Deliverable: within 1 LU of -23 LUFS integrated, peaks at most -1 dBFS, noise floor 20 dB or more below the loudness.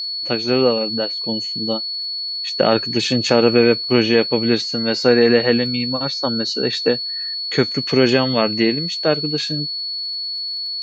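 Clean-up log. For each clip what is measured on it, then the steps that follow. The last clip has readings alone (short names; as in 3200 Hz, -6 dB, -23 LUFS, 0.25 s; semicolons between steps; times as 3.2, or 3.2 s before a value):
ticks 27/s; steady tone 4400 Hz; tone level -23 dBFS; loudness -18.0 LUFS; peak -1.0 dBFS; loudness target -23.0 LUFS
-> de-click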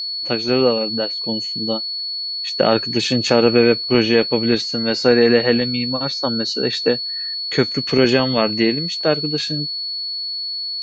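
ticks 0.092/s; steady tone 4400 Hz; tone level -23 dBFS
-> notch 4400 Hz, Q 30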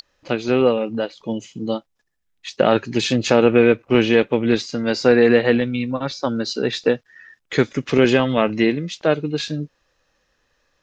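steady tone none; loudness -19.0 LUFS; peak -1.5 dBFS; loudness target -23.0 LUFS
-> gain -4 dB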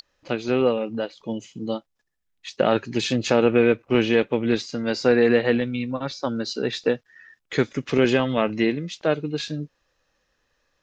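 loudness -23.0 LUFS; peak -5.5 dBFS; noise floor -74 dBFS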